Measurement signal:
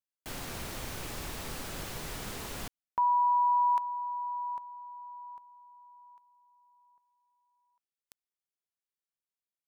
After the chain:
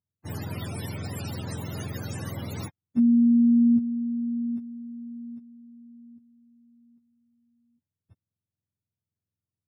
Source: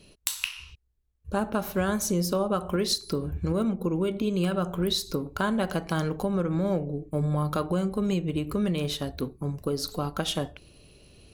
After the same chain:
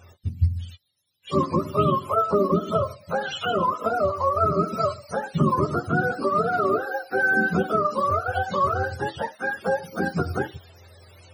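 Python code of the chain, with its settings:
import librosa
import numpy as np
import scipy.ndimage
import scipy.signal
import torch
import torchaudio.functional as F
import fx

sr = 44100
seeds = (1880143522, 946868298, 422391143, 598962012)

y = fx.octave_mirror(x, sr, pivot_hz=480.0)
y = y * librosa.db_to_amplitude(7.0)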